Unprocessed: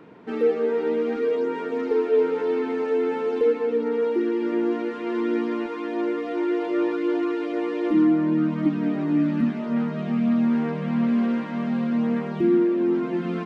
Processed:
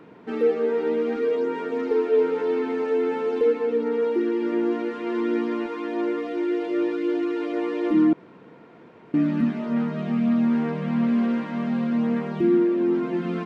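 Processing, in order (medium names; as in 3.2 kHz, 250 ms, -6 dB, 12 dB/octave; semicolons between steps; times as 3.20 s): 6.27–7.36 s: peaking EQ 1 kHz -6.5 dB 1.1 oct; 8.13–9.14 s: room tone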